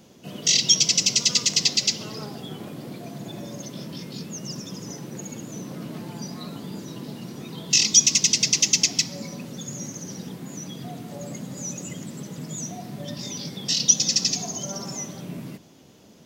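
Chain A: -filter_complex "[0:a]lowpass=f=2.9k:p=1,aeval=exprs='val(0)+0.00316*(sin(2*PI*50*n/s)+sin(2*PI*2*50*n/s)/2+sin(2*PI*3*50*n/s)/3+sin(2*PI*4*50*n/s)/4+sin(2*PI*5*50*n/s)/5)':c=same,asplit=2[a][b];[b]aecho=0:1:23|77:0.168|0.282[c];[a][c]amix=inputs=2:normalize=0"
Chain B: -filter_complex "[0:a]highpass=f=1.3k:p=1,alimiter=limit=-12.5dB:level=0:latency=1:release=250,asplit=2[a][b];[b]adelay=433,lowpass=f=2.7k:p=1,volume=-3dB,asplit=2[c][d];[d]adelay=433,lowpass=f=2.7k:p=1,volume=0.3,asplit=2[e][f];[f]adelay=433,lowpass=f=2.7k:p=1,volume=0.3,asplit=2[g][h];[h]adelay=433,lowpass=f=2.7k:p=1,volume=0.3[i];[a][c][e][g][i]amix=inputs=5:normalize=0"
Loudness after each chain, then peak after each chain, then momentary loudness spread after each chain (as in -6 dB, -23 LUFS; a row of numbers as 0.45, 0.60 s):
-29.0, -26.5 LUFS; -9.0, -11.5 dBFS; 14, 20 LU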